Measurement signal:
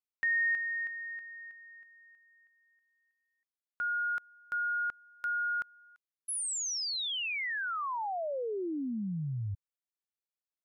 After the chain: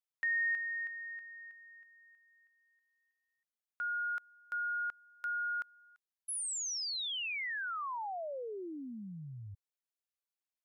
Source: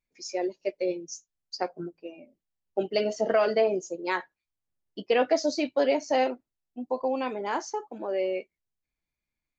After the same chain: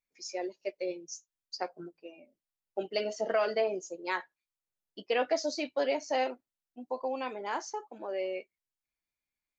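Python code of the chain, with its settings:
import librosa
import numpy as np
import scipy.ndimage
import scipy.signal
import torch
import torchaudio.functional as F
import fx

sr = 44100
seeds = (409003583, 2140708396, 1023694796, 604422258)

y = fx.low_shelf(x, sr, hz=370.0, db=-9.0)
y = y * librosa.db_to_amplitude(-3.0)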